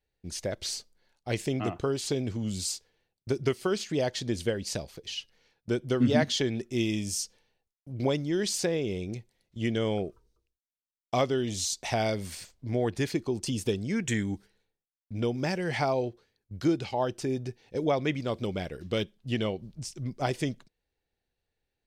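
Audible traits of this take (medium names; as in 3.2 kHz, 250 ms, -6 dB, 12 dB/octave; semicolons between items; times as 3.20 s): noise floor -90 dBFS; spectral tilt -5.0 dB/octave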